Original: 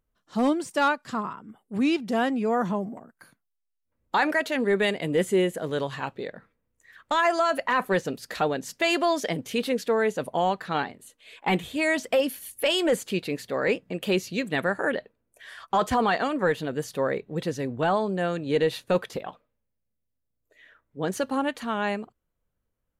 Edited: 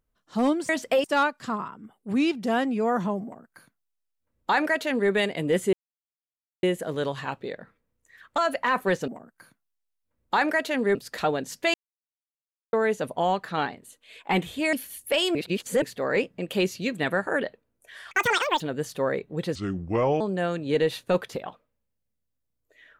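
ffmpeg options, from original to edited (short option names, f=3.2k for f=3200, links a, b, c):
-filter_complex "[0:a]asplit=16[a][b][c][d][e][f][g][h][i][j][k][l][m][n][o][p];[a]atrim=end=0.692[q];[b]atrim=start=11.898:end=12.252[r];[c]atrim=start=0.688:end=5.38,asetpts=PTS-STARTPTS,afade=t=out:st=4.688:d=0.004:c=hsin,apad=pad_dur=0.9[s];[d]atrim=start=5.38:end=7.132,asetpts=PTS-STARTPTS,afade=t=in:d=0.004:c=hsin[t];[e]atrim=start=7.418:end=8.122[u];[f]atrim=start=2.888:end=4.762[v];[g]atrim=start=8.118:end=8.91,asetpts=PTS-STARTPTS,afade=t=out:st=0.788:d=0.004:c=hsin[w];[h]atrim=start=8.91:end=9.9,asetpts=PTS-STARTPTS,volume=0[x];[i]atrim=start=9.9:end=11.902,asetpts=PTS-STARTPTS,afade=t=in:d=0.004:c=hsin[y];[j]atrim=start=12.248:end=12.872[z];[k]atrim=start=12.868:end=13.342,asetpts=PTS-STARTPTS,areverse[aa];[l]atrim=start=13.338:end=15.634[ab];[m]atrim=start=15.63:end=16.59,asetpts=PTS-STARTPTS,asetrate=85995,aresample=44100[ac];[n]atrim=start=16.586:end=17.544[ad];[o]atrim=start=17.54:end=18.01,asetpts=PTS-STARTPTS,asetrate=31752,aresample=44100[ae];[p]atrim=start=18.006[af];[q][r]acrossfade=d=0.004:c1=hsin:c2=hsin[ag];[s][t]concat=n=2:v=0:a=1[ah];[ag][ah]acrossfade=d=0.004:c1=hsin:c2=hsin[ai];[ai][u]acrossfade=d=0.004:c1=hsin:c2=hsin[aj];[aj][v]acrossfade=d=0.004:c1=hsin:c2=hsin[ak];[w][x][y]concat=n=3:v=0:a=1[al];[ak][al]acrossfade=d=0.004:c1=hsin:c2=hsin[am];[am][z]acrossfade=d=0.004:c1=hsin:c2=hsin[an];[an][aa]acrossfade=d=0.004:c1=hsin:c2=hsin[ao];[ao][ab]acrossfade=d=0.004:c1=hsin:c2=hsin[ap];[ap][ac]acrossfade=d=0.004:c1=hsin:c2=hsin[aq];[aq][ad]acrossfade=d=0.004:c1=hsin:c2=hsin[ar];[ar][ae]acrossfade=d=0.004:c1=hsin:c2=hsin[as];[as][af]acrossfade=d=0.004:c1=hsin:c2=hsin"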